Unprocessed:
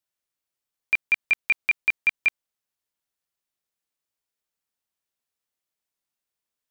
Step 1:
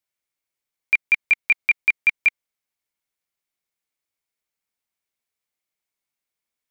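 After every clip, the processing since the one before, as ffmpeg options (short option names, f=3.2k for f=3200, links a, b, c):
-af "equalizer=f=2.2k:w=7.2:g=8.5"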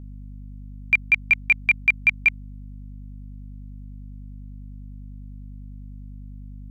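-af "aeval=exprs='val(0)+0.0141*(sin(2*PI*50*n/s)+sin(2*PI*2*50*n/s)/2+sin(2*PI*3*50*n/s)/3+sin(2*PI*4*50*n/s)/4+sin(2*PI*5*50*n/s)/5)':c=same"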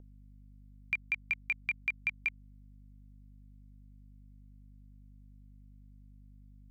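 -filter_complex "[0:a]acrossover=split=670|2000[a][b][c];[a]acompressor=threshold=-46dB:ratio=4[d];[b]acompressor=threshold=-31dB:ratio=4[e];[c]acompressor=threshold=-26dB:ratio=4[f];[d][e][f]amix=inputs=3:normalize=0,volume=-8.5dB"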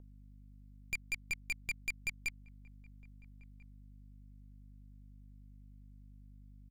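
-filter_complex "[0:a]aeval=exprs='(tanh(56.2*val(0)+0.7)-tanh(0.7))/56.2':c=same,asplit=2[a][b];[b]adelay=1341,volume=-21dB,highshelf=f=4k:g=-30.2[c];[a][c]amix=inputs=2:normalize=0,volume=3dB"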